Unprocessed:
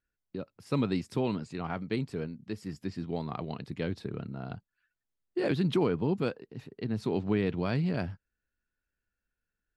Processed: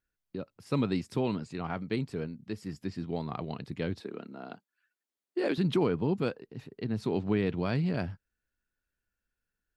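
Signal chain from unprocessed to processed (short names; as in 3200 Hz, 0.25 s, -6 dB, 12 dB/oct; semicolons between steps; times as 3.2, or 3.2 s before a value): 4–5.58 HPF 230 Hz 24 dB/oct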